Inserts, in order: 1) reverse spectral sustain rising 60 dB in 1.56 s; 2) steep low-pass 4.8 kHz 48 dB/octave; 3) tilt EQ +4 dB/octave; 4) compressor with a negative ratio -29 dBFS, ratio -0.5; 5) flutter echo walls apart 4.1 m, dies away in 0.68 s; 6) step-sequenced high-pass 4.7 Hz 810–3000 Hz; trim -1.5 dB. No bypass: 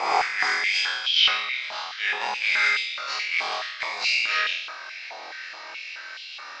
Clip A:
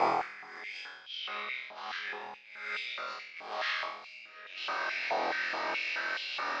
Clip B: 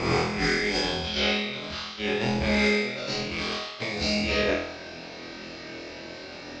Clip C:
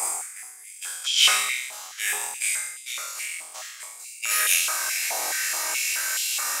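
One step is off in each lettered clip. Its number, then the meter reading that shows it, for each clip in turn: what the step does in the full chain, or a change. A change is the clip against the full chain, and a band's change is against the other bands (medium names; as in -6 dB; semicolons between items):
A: 3, 500 Hz band +12.5 dB; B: 6, 500 Hz band +17.0 dB; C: 2, 8 kHz band +23.5 dB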